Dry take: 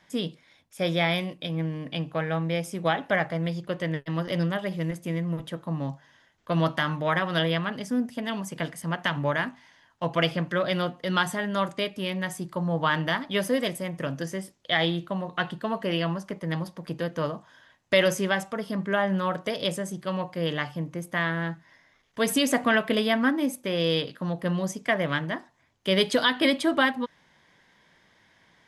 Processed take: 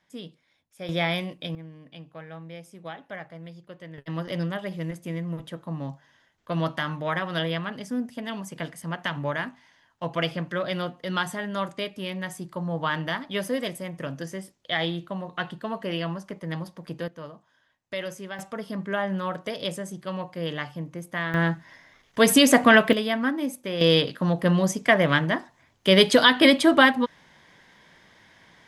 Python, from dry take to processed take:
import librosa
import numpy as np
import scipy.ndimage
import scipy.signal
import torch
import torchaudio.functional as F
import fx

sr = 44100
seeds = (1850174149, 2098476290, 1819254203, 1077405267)

y = fx.gain(x, sr, db=fx.steps((0.0, -10.0), (0.89, -1.0), (1.55, -13.5), (3.98, -2.5), (17.08, -11.5), (18.39, -2.5), (21.34, 7.0), (22.93, -2.0), (23.81, 6.0)))